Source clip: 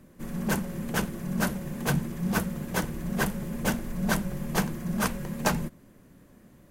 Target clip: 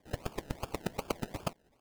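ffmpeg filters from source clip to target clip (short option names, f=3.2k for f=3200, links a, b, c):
-af "bandpass=f=1.7k:t=q:w=9.5:csg=0,asetrate=164052,aresample=44100,acrusher=samples=31:mix=1:aa=0.000001:lfo=1:lforange=18.6:lforate=2.6,volume=7.5dB"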